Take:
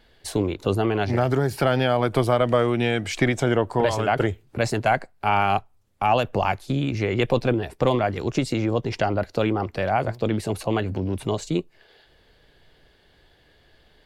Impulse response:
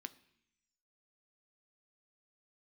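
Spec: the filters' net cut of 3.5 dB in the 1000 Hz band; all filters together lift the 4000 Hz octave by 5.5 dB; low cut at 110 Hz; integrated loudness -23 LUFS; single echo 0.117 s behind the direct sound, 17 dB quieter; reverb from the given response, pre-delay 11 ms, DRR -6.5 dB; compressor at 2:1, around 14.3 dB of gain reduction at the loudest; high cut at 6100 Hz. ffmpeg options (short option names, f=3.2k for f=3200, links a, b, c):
-filter_complex "[0:a]highpass=110,lowpass=6.1k,equalizer=f=1k:t=o:g=-5.5,equalizer=f=4k:t=o:g=8.5,acompressor=threshold=-44dB:ratio=2,aecho=1:1:117:0.141,asplit=2[a][b];[1:a]atrim=start_sample=2205,adelay=11[c];[b][c]afir=irnorm=-1:irlink=0,volume=10.5dB[d];[a][d]amix=inputs=2:normalize=0,volume=8.5dB"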